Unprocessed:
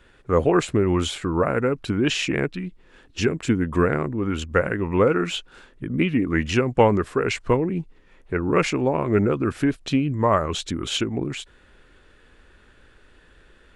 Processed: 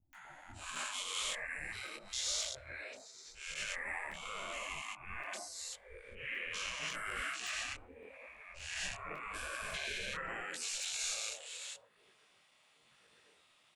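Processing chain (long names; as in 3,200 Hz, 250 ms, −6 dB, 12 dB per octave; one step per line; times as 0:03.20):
spectrum averaged block by block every 400 ms
reverb reduction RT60 0.6 s
volume swells 316 ms
gate on every frequency bin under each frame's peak −20 dB weak
brickwall limiter −33 dBFS, peak gain reduction 11 dB
high-shelf EQ 7,300 Hz +7.5 dB
three-band delay without the direct sound lows, highs, mids 130/250 ms, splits 230/930 Hz
noise reduction from a noise print of the clip's start 8 dB
hum removal 165.6 Hz, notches 9
regular buffer underruns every 0.56 s, samples 256, zero, from 0:00.75
micro pitch shift up and down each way 29 cents
level +9 dB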